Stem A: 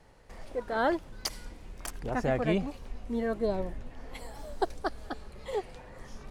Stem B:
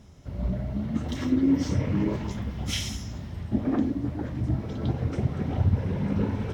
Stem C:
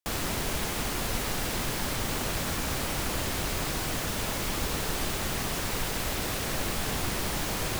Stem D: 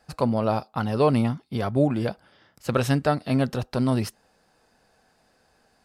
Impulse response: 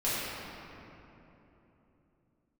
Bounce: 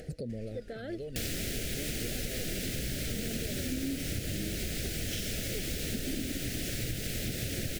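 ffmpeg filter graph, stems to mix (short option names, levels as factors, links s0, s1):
-filter_complex "[0:a]volume=0.631[s0];[1:a]adelay=2400,volume=0.562[s1];[2:a]adelay=1100,volume=1.12[s2];[3:a]equalizer=f=470:t=o:w=0.77:g=12,acompressor=threshold=0.0282:ratio=2,aphaser=in_gain=1:out_gain=1:delay=1.1:decay=0.79:speed=0.43:type=triangular,volume=0.224[s3];[s0][s3]amix=inputs=2:normalize=0,alimiter=level_in=1.5:limit=0.0631:level=0:latency=1:release=81,volume=0.668,volume=1[s4];[s1][s2][s4]amix=inputs=3:normalize=0,acompressor=mode=upward:threshold=0.02:ratio=2.5,asuperstop=centerf=1000:order=4:qfactor=0.81,acompressor=threshold=0.0282:ratio=6"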